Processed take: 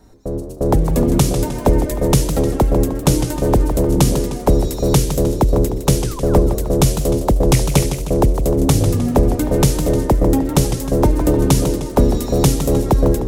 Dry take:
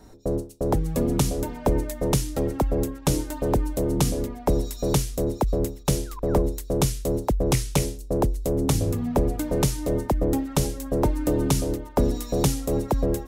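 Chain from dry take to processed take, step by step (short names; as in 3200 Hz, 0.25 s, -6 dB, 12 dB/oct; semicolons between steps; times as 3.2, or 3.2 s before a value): low shelf 180 Hz +3 dB; AGC; warbling echo 0.154 s, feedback 51%, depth 200 cents, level -9.5 dB; gain -1 dB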